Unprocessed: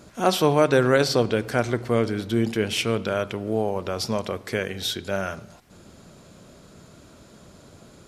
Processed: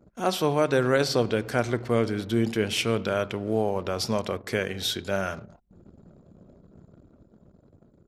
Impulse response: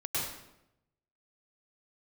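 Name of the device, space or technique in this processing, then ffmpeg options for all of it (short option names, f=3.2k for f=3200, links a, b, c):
voice memo with heavy noise removal: -af "anlmdn=0.0398,dynaudnorm=f=110:g=17:m=4.5dB,volume=-5dB"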